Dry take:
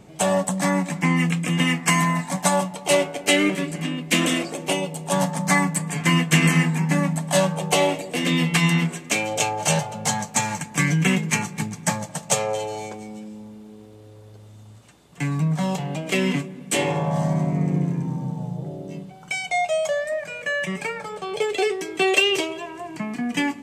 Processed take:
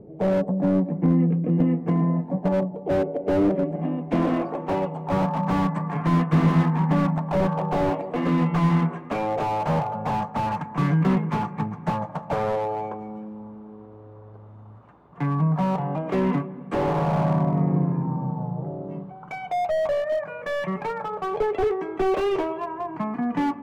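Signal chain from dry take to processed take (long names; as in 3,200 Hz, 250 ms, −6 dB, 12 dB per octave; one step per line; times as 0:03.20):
low-pass filter sweep 450 Hz → 1,100 Hz, 0:03.02–0:04.64
slew-rate limiting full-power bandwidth 54 Hz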